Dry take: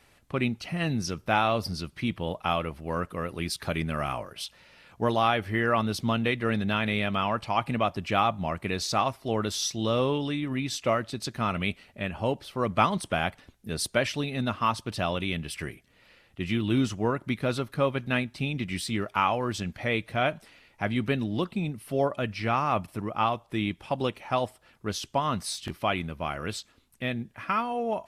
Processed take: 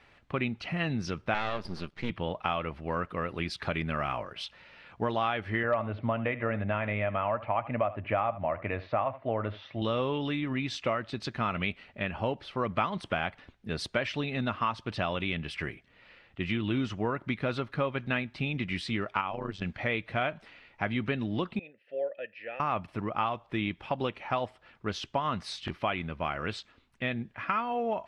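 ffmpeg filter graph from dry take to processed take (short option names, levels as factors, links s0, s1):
-filter_complex "[0:a]asettb=1/sr,asplit=3[s0][s1][s2];[s0]atrim=end=1.344[s3];[s1]atrim=start=1.34:end=2.1,asetpts=PTS-STARTPTS,afade=t=in:d=0.004:c=qsin,afade=t=out:st=0.756:d=0.004:c=qsin,aecho=1:1:5:0.36,atrim=end_sample=33516,aeval=exprs='max(val(0),0)':c=same[s4];[s2]atrim=start=2.096[s5];[s3][s4]acrossfade=d=0.004:c1=hsin:c2=qsin[s6];[s6][s5]acrossfade=d=0.004:c1=qsin:c2=hsin,asettb=1/sr,asplit=3[s7][s8][s9];[s7]atrim=end=5.634[s10];[s8]atrim=start=5.63:end=9.82,asetpts=PTS-STARTPTS,afade=t=in:d=0.004:c=qsin,afade=t=out:st=4.186:d=0.004:c=qsin,highpass=100,equalizer=f=100:t=q:w=4:g=8,equalizer=f=180:t=q:w=4:g=-9,equalizer=f=390:t=q:w=4:g=-6,equalizer=f=600:t=q:w=4:g=10,equalizer=f=1500:t=q:w=4:g=-3,lowpass=f=2300:w=0.5412,lowpass=f=2300:w=1.3066,asoftclip=type=hard:threshold=0.299,aecho=1:1:76:0.133,atrim=end_sample=184779[s11];[s9]atrim=start=9.816[s12];[s10][s11]acrossfade=d=0.004:c1=hsin:c2=qsin[s13];[s13][s12]acrossfade=d=0.004:c1=qsin:c2=hsin,asettb=1/sr,asplit=3[s14][s15][s16];[s14]atrim=end=19.214[s17];[s15]atrim=start=19.21:end=19.62,asetpts=PTS-STARTPTS,afade=t=in:d=0.004:c=qsin,afade=t=out:st=0.406:d=0.004:c=qsin,equalizer=f=1900:w=0.3:g=-6,acrossover=split=7300[s18][s19];[s19]acompressor=threshold=0.00158:ratio=4:attack=1:release=60[s20];[s18][s20]amix=inputs=2:normalize=0,tremolo=f=96:d=0.919[s21];[s16]atrim=start=19.616[s22];[s17][s21]acrossfade=d=0.004:c1=hsin:c2=qsin[s23];[s23][s22]acrossfade=d=0.004:c1=qsin:c2=hsin,asettb=1/sr,asplit=3[s24][s25][s26];[s24]atrim=end=21.594[s27];[s25]atrim=start=21.59:end=22.6,asetpts=PTS-STARTPTS,afade=t=in:d=0.004:c=qsin,afade=t=out:st=1.006:d=0.004:c=qsin,asplit=3[s28][s29][s30];[s28]bandpass=f=530:t=q:w=8,volume=1[s31];[s29]bandpass=f=1840:t=q:w=8,volume=0.501[s32];[s30]bandpass=f=2480:t=q:w=8,volume=0.355[s33];[s31][s32][s33]amix=inputs=3:normalize=0,lowshelf=f=210:g=-7[s34];[s26]atrim=start=22.596[s35];[s27][s34]acrossfade=d=0.004:c1=hsin:c2=qsin[s36];[s36][s35]acrossfade=d=0.004:c1=qsin:c2=hsin,lowpass=2800,tiltshelf=f=970:g=-3,acompressor=threshold=0.0355:ratio=3,volume=1.26"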